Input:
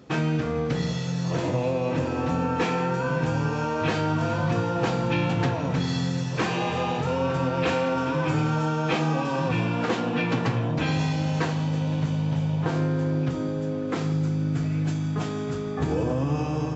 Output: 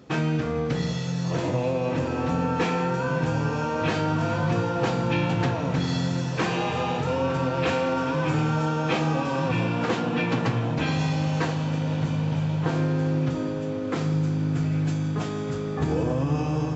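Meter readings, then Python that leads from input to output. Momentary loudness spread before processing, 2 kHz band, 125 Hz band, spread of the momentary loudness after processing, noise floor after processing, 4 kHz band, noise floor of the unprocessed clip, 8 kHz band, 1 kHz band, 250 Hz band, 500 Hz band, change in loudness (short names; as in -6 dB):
3 LU, 0.0 dB, +0.5 dB, 3 LU, -29 dBFS, 0.0 dB, -29 dBFS, n/a, 0.0 dB, +0.5 dB, 0.0 dB, 0.0 dB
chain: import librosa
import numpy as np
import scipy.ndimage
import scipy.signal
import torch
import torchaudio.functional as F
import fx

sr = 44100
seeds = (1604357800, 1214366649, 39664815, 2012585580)

y = fx.echo_diffused(x, sr, ms=1808, feedback_pct=47, wet_db=-14.0)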